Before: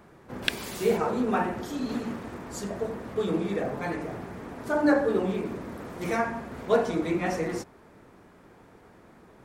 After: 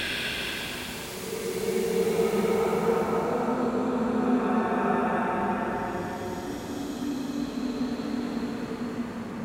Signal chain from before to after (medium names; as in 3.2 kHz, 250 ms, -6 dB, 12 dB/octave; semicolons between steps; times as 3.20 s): wow and flutter 33 cents; Paulstretch 5.6×, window 0.50 s, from 0.48 s